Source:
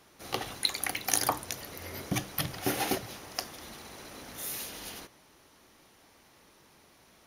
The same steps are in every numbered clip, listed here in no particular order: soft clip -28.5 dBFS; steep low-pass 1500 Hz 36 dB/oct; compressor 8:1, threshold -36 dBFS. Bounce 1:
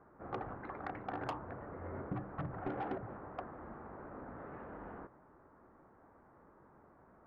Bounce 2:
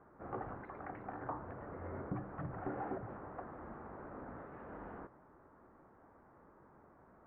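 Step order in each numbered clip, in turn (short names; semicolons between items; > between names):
steep low-pass > soft clip > compressor; soft clip > compressor > steep low-pass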